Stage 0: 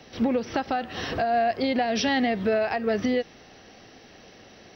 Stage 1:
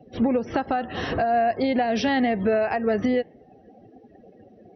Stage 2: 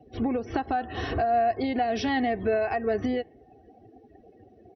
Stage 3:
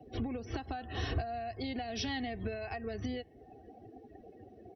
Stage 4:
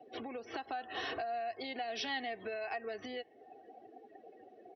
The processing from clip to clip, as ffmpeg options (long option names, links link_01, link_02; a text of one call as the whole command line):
ffmpeg -i in.wav -filter_complex "[0:a]afftdn=noise_reduction=28:noise_floor=-43,lowpass=frequency=2200:poles=1,asplit=2[link_01][link_02];[link_02]acompressor=threshold=-32dB:ratio=6,volume=0dB[link_03];[link_01][link_03]amix=inputs=2:normalize=0" out.wav
ffmpeg -i in.wav -af "equalizer=frequency=74:width_type=o:width=1.6:gain=7,aecho=1:1:2.7:0.52,volume=-5dB" out.wav
ffmpeg -i in.wav -filter_complex "[0:a]acrossover=split=140|3000[link_01][link_02][link_03];[link_02]acompressor=threshold=-38dB:ratio=10[link_04];[link_01][link_04][link_03]amix=inputs=3:normalize=0" out.wav
ffmpeg -i in.wav -af "highpass=490,lowpass=4000,volume=2.5dB" out.wav